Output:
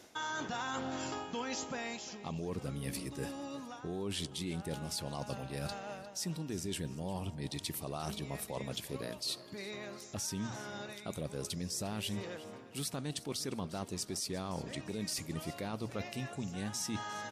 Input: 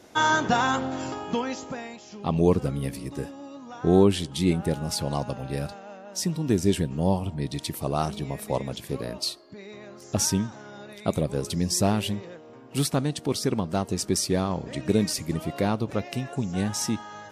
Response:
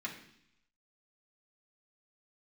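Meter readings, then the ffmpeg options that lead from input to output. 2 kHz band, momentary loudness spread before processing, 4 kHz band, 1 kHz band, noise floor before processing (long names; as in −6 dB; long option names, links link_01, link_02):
−11.5 dB, 14 LU, −8.0 dB, −13.0 dB, −47 dBFS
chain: -af "tiltshelf=frequency=1400:gain=-3.5,bandreject=frequency=60:width_type=h:width=6,bandreject=frequency=120:width_type=h:width=6,alimiter=limit=-18dB:level=0:latency=1:release=23,areverse,acompressor=threshold=-37dB:ratio=6,areverse,aecho=1:1:353|706|1059|1412:0.133|0.0573|0.0247|0.0106,volume=1dB"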